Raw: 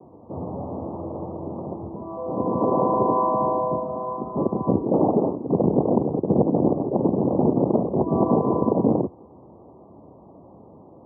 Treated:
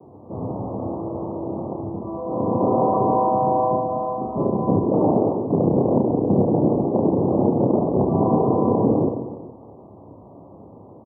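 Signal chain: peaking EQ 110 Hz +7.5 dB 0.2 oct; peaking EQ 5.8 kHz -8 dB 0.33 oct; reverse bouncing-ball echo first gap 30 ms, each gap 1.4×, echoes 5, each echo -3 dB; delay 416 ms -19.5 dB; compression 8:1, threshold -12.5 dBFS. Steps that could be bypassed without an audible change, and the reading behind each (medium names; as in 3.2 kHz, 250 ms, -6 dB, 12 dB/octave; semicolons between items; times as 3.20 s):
peaking EQ 5.8 kHz: input has nothing above 1.2 kHz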